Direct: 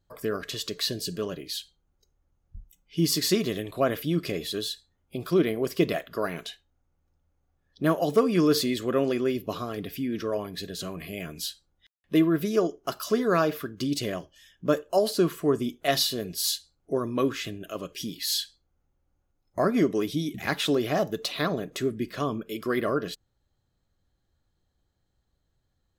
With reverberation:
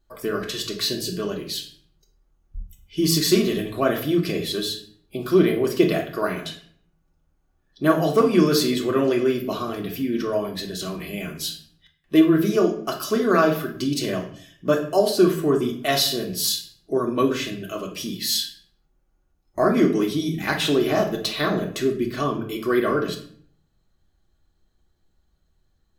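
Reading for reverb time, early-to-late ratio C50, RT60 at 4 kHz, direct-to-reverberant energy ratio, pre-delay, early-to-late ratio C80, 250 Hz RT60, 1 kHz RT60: 0.55 s, 9.5 dB, 0.40 s, 0.0 dB, 3 ms, 13.5 dB, 0.70 s, 0.55 s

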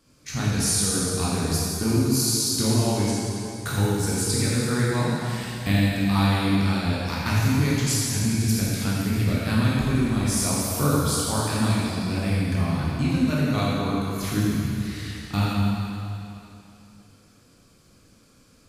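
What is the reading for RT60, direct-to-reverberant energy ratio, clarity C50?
2.8 s, -7.0 dB, -3.5 dB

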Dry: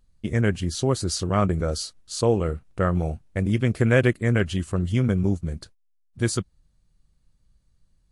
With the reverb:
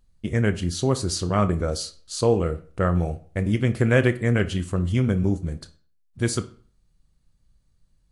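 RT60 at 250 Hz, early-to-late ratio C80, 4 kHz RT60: 0.45 s, 20.0 dB, 0.35 s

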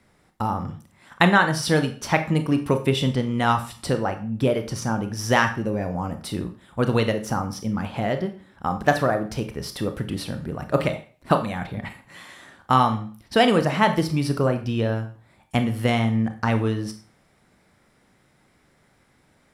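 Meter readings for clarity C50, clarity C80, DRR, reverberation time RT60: 12.0 dB, 16.0 dB, 7.0 dB, 0.40 s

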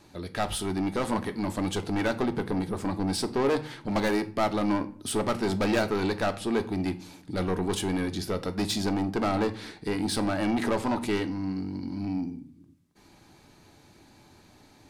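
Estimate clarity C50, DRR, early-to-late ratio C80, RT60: 16.5 dB, 8.0 dB, 20.0 dB, 0.45 s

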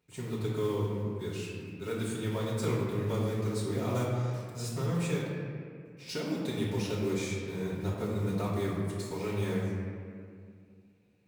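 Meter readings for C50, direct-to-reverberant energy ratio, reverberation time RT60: -0.5 dB, -9.5 dB, 2.1 s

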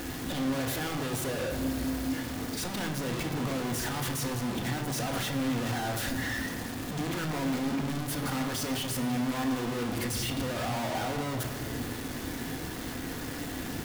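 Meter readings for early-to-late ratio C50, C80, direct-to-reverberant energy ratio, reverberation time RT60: 8.0 dB, 8.5 dB, 2.5 dB, 2.5 s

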